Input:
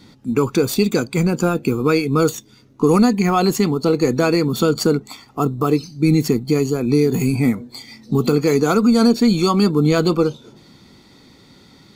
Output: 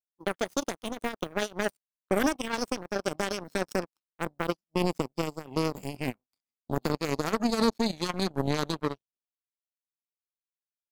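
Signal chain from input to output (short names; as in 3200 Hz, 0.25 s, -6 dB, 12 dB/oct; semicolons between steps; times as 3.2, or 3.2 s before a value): speed glide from 140% -> 79%; power-law curve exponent 3; gain -5.5 dB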